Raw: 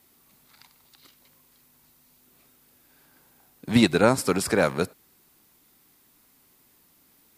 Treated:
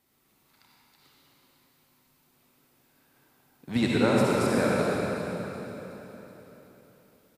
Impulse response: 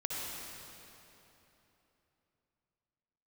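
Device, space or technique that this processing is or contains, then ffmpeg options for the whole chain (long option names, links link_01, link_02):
swimming-pool hall: -filter_complex "[1:a]atrim=start_sample=2205[link_01];[0:a][link_01]afir=irnorm=-1:irlink=0,highshelf=frequency=5200:gain=-6,aecho=1:1:374|748|1122|1496|1870:0.211|0.114|0.0616|0.0333|0.018,volume=-6dB"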